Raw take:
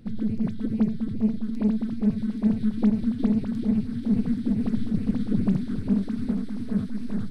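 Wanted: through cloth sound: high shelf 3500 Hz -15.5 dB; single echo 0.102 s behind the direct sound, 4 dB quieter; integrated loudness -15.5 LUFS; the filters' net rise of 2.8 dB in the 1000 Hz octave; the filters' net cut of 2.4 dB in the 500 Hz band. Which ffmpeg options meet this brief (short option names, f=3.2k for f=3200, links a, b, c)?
-af "equalizer=f=500:t=o:g=-4,equalizer=f=1k:t=o:g=6.5,highshelf=f=3.5k:g=-15.5,aecho=1:1:102:0.631,volume=9.5dB"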